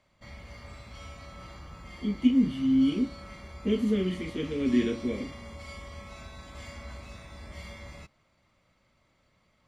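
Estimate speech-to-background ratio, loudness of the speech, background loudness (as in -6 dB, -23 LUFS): 17.5 dB, -27.5 LUFS, -45.0 LUFS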